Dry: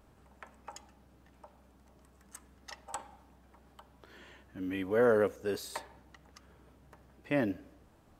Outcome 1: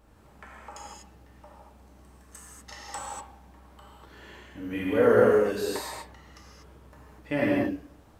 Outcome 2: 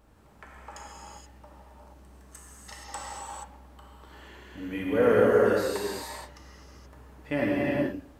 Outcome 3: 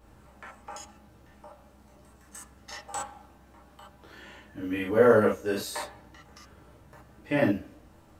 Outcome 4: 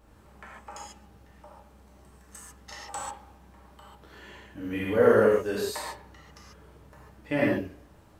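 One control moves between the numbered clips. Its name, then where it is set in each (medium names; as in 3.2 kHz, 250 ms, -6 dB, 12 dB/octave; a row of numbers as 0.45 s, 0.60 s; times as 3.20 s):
gated-style reverb, gate: 270 ms, 500 ms, 90 ms, 170 ms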